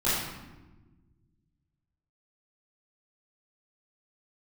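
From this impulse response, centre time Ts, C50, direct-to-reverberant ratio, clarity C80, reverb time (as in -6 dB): 82 ms, -1.5 dB, -13.5 dB, 2.0 dB, 1.3 s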